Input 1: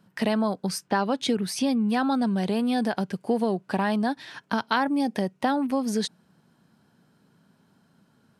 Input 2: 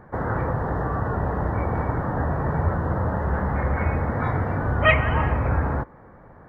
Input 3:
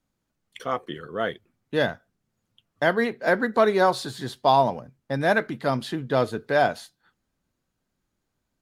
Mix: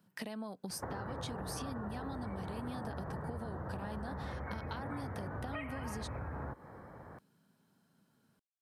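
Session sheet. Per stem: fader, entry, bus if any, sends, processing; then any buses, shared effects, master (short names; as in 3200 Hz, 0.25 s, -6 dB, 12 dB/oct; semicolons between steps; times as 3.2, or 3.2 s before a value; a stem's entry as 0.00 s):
-10.0 dB, 0.00 s, bus A, no send, dry
-3.5 dB, 0.70 s, no bus, no send, compressor, threshold -30 dBFS, peak gain reduction 17.5 dB
off
bus A: 0.0 dB, high shelf 10000 Hz +8.5 dB; compressor, threshold -36 dBFS, peak gain reduction 8 dB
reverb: off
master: HPF 64 Hz; high shelf 9600 Hz +4 dB; compressor 4:1, threshold -38 dBFS, peak gain reduction 8 dB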